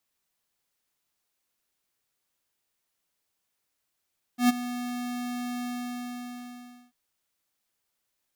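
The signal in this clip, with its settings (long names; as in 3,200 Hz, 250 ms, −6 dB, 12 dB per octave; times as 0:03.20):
note with an ADSR envelope square 245 Hz, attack 111 ms, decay 21 ms, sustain −15 dB, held 1.26 s, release 1,280 ms −18 dBFS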